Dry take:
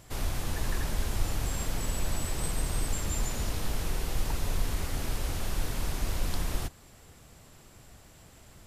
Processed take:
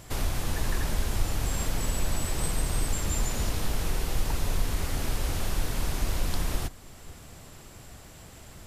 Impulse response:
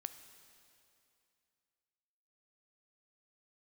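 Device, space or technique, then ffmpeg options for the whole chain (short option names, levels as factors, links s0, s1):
ducked reverb: -filter_complex "[0:a]asplit=3[s0][s1][s2];[1:a]atrim=start_sample=2205[s3];[s1][s3]afir=irnorm=-1:irlink=0[s4];[s2]apad=whole_len=382324[s5];[s4][s5]sidechaincompress=threshold=0.0224:ratio=8:attack=16:release=687,volume=1.5[s6];[s0][s6]amix=inputs=2:normalize=0"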